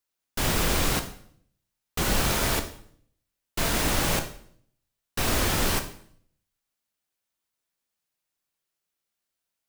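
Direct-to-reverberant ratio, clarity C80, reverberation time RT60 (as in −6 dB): 6.5 dB, 14.5 dB, 0.60 s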